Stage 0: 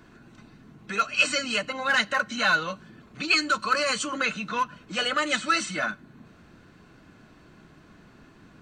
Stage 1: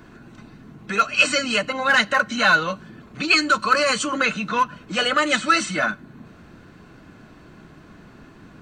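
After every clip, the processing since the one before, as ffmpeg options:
-af "equalizer=f=5.5k:w=0.36:g=-3,volume=7dB"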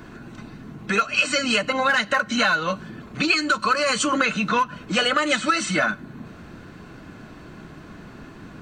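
-af "acompressor=threshold=-21dB:ratio=12,volume=4.5dB"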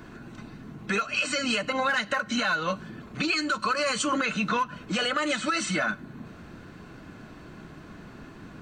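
-af "alimiter=limit=-13dB:level=0:latency=1:release=62,volume=-3.5dB"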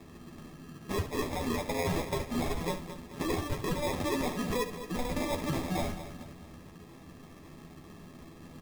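-filter_complex "[0:a]asplit=2[a][b];[b]aecho=0:1:217|434|651|868:0.251|0.108|0.0464|0.02[c];[a][c]amix=inputs=2:normalize=0,acrusher=samples=30:mix=1:aa=0.000001,asplit=2[d][e];[e]aecho=0:1:12|71:0.562|0.282[f];[d][f]amix=inputs=2:normalize=0,volume=-6.5dB"

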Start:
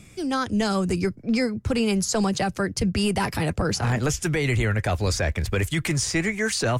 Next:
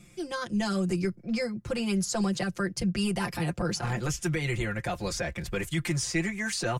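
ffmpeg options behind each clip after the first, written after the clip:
-af "aecho=1:1:5.7:0.91,volume=-8.5dB"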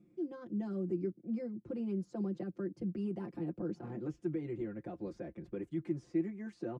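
-af "bandpass=f=300:t=q:w=3.1:csg=0"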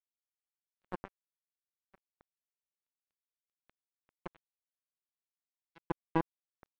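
-af "acrusher=bits=3:mix=0:aa=0.5,volume=10dB"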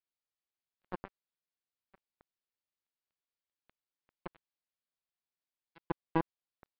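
-af "aresample=11025,aresample=44100"

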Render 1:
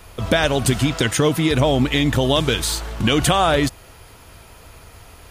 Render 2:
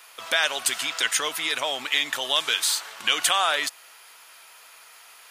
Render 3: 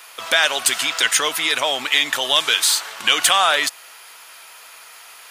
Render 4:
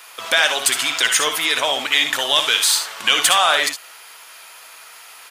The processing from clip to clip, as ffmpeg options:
-af "highpass=1.2k"
-af "asoftclip=type=tanh:threshold=-9dB,volume=7dB"
-af "aecho=1:1:60|74:0.355|0.266"

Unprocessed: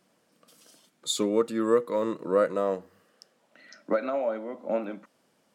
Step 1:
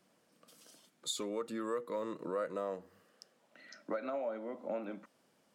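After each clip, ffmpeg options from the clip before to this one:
-filter_complex "[0:a]acrossover=split=520|2700[a][b][c];[a]alimiter=level_in=2.5dB:limit=-24dB:level=0:latency=1,volume=-2.5dB[d];[d][b][c]amix=inputs=3:normalize=0,acompressor=threshold=-35dB:ratio=2,volume=-3.5dB"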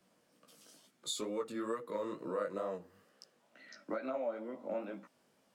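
-filter_complex "[0:a]acrossover=split=120[a][b];[a]acrusher=samples=17:mix=1:aa=0.000001[c];[b]flanger=delay=15:depth=6:speed=2.2[d];[c][d]amix=inputs=2:normalize=0,volume=2.5dB"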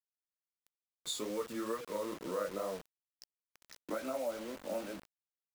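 -af "acrusher=bits=7:mix=0:aa=0.000001"

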